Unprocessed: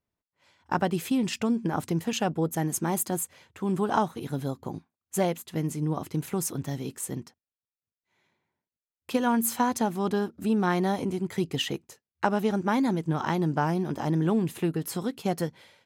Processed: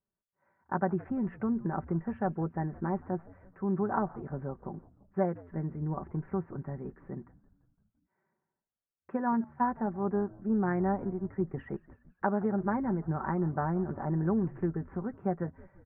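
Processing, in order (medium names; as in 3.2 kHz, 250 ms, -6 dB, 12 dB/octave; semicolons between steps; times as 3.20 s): steep low-pass 1.8 kHz 48 dB/octave; comb 5.2 ms, depth 49%; frequency-shifting echo 170 ms, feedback 63%, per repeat -85 Hz, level -21 dB; 9.44–11.54 s: three bands expanded up and down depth 70%; trim -6 dB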